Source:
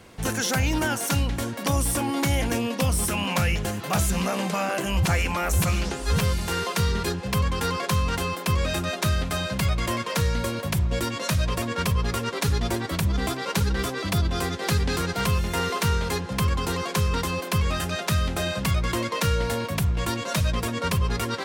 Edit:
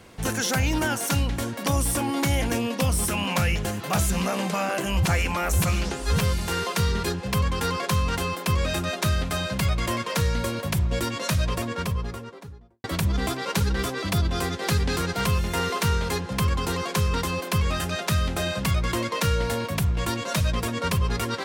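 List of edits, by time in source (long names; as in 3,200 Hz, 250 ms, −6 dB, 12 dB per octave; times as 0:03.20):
0:11.37–0:12.84: fade out and dull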